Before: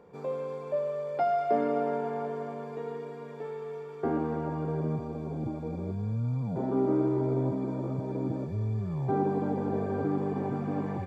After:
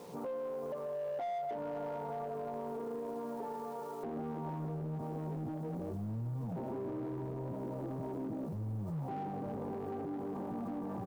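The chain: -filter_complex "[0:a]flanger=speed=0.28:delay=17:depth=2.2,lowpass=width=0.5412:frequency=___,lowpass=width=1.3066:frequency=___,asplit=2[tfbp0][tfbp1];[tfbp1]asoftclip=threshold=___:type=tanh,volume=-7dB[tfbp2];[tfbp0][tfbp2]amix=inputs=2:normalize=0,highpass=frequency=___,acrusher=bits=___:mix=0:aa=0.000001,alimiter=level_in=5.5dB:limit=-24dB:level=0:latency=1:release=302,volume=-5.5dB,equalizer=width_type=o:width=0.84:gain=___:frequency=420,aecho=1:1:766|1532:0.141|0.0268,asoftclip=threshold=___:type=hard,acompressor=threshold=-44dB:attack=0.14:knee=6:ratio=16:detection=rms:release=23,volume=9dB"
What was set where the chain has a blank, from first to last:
1100, 1100, -31.5dB, 150, 10, -4.5, -33dB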